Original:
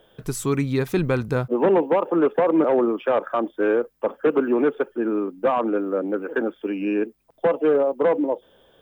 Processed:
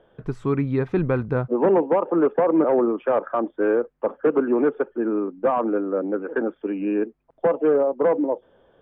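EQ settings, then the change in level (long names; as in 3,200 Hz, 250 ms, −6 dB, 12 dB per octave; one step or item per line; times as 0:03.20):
low-pass filter 1,700 Hz 12 dB per octave
0.0 dB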